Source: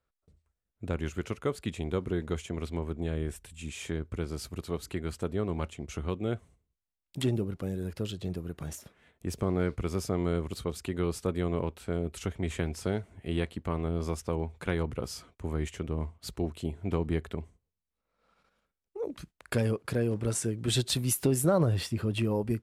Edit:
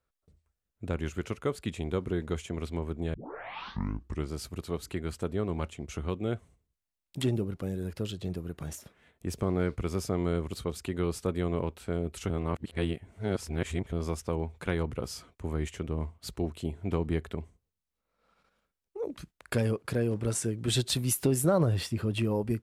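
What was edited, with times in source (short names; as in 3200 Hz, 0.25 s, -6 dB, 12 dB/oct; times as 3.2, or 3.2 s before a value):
3.14 tape start 1.18 s
12.3–13.92 reverse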